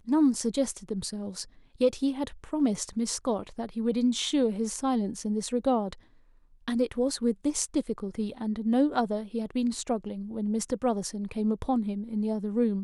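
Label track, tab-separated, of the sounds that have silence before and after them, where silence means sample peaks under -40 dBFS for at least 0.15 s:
1.810000	5.940000	sound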